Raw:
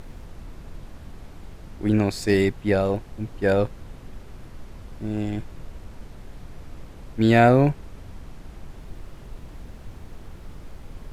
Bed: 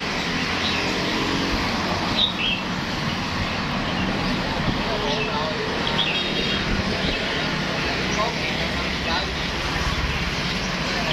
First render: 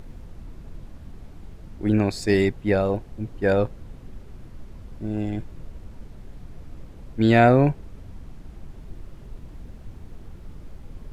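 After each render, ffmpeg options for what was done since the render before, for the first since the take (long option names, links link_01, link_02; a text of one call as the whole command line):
ffmpeg -i in.wav -af "afftdn=noise_reduction=6:noise_floor=-43" out.wav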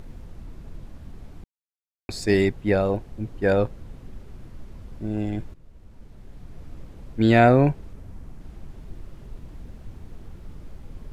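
ffmpeg -i in.wav -filter_complex "[0:a]asettb=1/sr,asplit=3[link_01][link_02][link_03];[link_01]atrim=end=7.934[link_04];[link_02]atrim=start=7.93:end=8.41,asetpts=PTS-STARTPTS,afade=type=in:duration=0.004:curve=qsin,afade=type=out:start_time=0.476:duration=0.004:curve=qsin,equalizer=frequency=3600:width=0.9:gain=-4.5[link_05];[link_03]atrim=start=8.406[link_06];[link_04][link_05]acrossfade=duration=0.004:curve1=hsin:curve2=qsin[link_07];[link_07][link_06]acrossfade=duration=0.004:curve1=qsin:curve2=hsin,asplit=4[link_08][link_09][link_10][link_11];[link_08]atrim=end=1.44,asetpts=PTS-STARTPTS,afade=type=out:start_time=1.436:duration=0.004:curve=hsin[link_12];[link_09]atrim=start=1.44:end=2.09,asetpts=PTS-STARTPTS,volume=0[link_13];[link_10]atrim=start=2.09:end=5.54,asetpts=PTS-STARTPTS,afade=type=in:duration=0.004:curve=hsin,afade=type=out:start_time=3.446:duration=0.004:curve=hsin:silence=0.188365[link_14];[link_11]atrim=start=5.54,asetpts=PTS-STARTPTS,afade=type=in:duration=1.12:silence=0.188365[link_15];[link_12][link_13][link_14][link_15]concat=n=4:v=0:a=1" out.wav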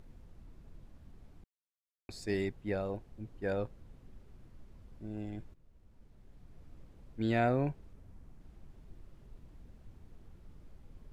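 ffmpeg -i in.wav -af "volume=-14dB" out.wav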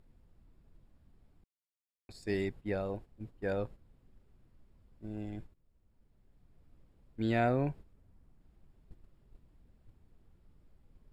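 ffmpeg -i in.wav -af "agate=range=-9dB:threshold=-46dB:ratio=16:detection=peak,bandreject=frequency=6100:width=6.7" out.wav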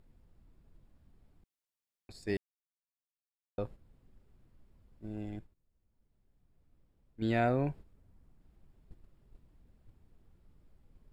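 ffmpeg -i in.wav -filter_complex "[0:a]asplit=5[link_01][link_02][link_03][link_04][link_05];[link_01]atrim=end=2.37,asetpts=PTS-STARTPTS,afade=type=out:start_time=2.366:duration=0.004:curve=hsin[link_06];[link_02]atrim=start=2.37:end=3.58,asetpts=PTS-STARTPTS,volume=0[link_07];[link_03]atrim=start=3.58:end=5.392,asetpts=PTS-STARTPTS,afade=type=in:duration=0.004:curve=hsin[link_08];[link_04]atrim=start=5.388:end=7.222,asetpts=PTS-STARTPTS,volume=-6.5dB[link_09];[link_05]atrim=start=7.218[link_10];[link_06][link_07][link_08]concat=n=3:v=0:a=1[link_11];[link_11][link_09]acrossfade=duration=0.004:curve1=hsin:curve2=hsin[link_12];[link_12][link_10]acrossfade=duration=0.004:curve1=hsin:curve2=hsin" out.wav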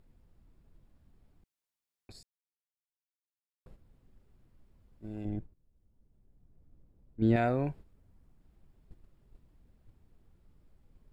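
ffmpeg -i in.wav -filter_complex "[0:a]asettb=1/sr,asplit=3[link_01][link_02][link_03];[link_01]atrim=end=5.254[link_04];[link_02]atrim=start=5.25:end=7.36,asetpts=PTS-STARTPTS,afade=type=in:duration=0.004:curve=qsin,afade=type=out:start_time=2.106:duration=0.004:curve=qsin,tiltshelf=frequency=970:gain=7.5[link_05];[link_03]atrim=start=7.356[link_06];[link_04][link_05]acrossfade=duration=0.004:curve1=hsin:curve2=qsin[link_07];[link_07][link_06]acrossfade=duration=0.004:curve1=qsin:curve2=hsin,asplit=3[link_08][link_09][link_10];[link_08]atrim=end=2.23,asetpts=PTS-STARTPTS,afade=type=out:start_time=2.226:duration=0.004:curve=hsin[link_11];[link_09]atrim=start=2.23:end=3.66,asetpts=PTS-STARTPTS,volume=0[link_12];[link_10]atrim=start=3.66,asetpts=PTS-STARTPTS,afade=type=in:duration=0.004:curve=hsin[link_13];[link_11][link_12][link_13]concat=n=3:v=0:a=1" out.wav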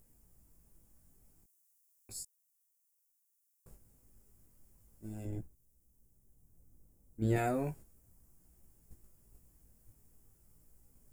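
ffmpeg -i in.wav -af "aexciter=amount=9:drive=6.9:freq=5800,flanger=delay=16.5:depth=3.2:speed=0.35" out.wav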